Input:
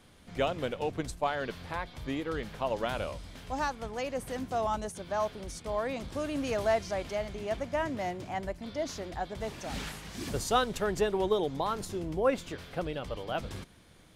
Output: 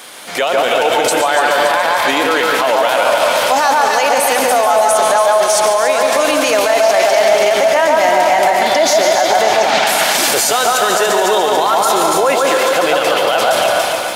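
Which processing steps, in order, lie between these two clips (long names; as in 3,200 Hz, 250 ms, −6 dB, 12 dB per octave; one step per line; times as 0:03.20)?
high-pass filter 600 Hz 12 dB per octave
high-shelf EQ 8,300 Hz +9 dB
automatic gain control gain up to 5.5 dB
0:09.41–0:09.87: high-frequency loss of the air 130 metres
on a send: delay that swaps between a low-pass and a high-pass 143 ms, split 1,600 Hz, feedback 55%, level −3.5 dB
on the sum: comb and all-pass reverb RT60 1.7 s, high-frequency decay 0.9×, pre-delay 90 ms, DRR 7.5 dB
boost into a limiter +31 dB
feedback echo at a low word length 142 ms, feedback 80%, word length 7 bits, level −11 dB
level −4.5 dB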